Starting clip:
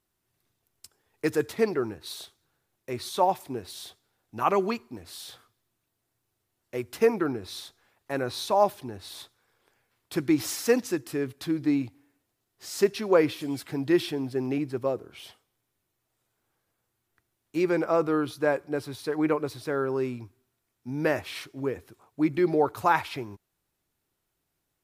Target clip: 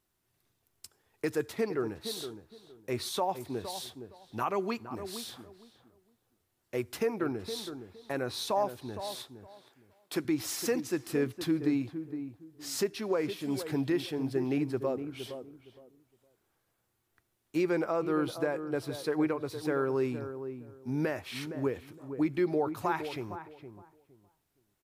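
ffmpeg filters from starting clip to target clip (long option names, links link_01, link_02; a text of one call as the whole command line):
ffmpeg -i in.wav -filter_complex "[0:a]asettb=1/sr,asplit=3[link_01][link_02][link_03];[link_01]atrim=end=9.004[link_04];[link_02]atrim=start=9:end=10.25,asetpts=PTS-STARTPTS,afade=type=in:duration=0.004:curve=qsin,afade=type=out:start_time=1.246:duration=0.004:curve=qsin,highpass=220[link_05];[link_03]atrim=start=10.246[link_06];[link_04][link_05]acrossfade=duration=0.004:curve1=hsin:curve2=qsin[link_07];[link_07][link_06]acrossfade=duration=0.004:curve1=qsin:curve2=hsin,alimiter=limit=-20dB:level=0:latency=1:release=455,asplit=2[link_08][link_09];[link_09]adelay=464,lowpass=frequency=1000:poles=1,volume=-9dB,asplit=2[link_10][link_11];[link_11]adelay=464,lowpass=frequency=1000:poles=1,volume=0.23,asplit=2[link_12][link_13];[link_13]adelay=464,lowpass=frequency=1000:poles=1,volume=0.23[link_14];[link_08][link_10][link_12][link_14]amix=inputs=4:normalize=0" out.wav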